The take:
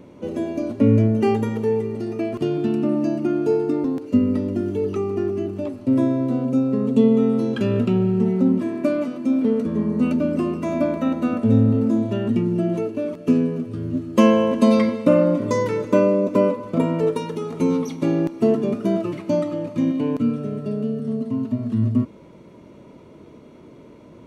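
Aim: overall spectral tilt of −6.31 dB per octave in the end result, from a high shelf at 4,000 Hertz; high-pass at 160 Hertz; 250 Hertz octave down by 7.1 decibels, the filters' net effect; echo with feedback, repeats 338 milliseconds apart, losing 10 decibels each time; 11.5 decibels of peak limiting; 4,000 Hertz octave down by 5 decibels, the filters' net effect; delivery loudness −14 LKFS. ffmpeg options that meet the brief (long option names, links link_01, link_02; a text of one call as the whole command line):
ffmpeg -i in.wav -af "highpass=160,equalizer=frequency=250:width_type=o:gain=-7.5,highshelf=frequency=4000:gain=-5.5,equalizer=frequency=4000:width_type=o:gain=-4,alimiter=limit=-18dB:level=0:latency=1,aecho=1:1:338|676|1014|1352:0.316|0.101|0.0324|0.0104,volume=13.5dB" out.wav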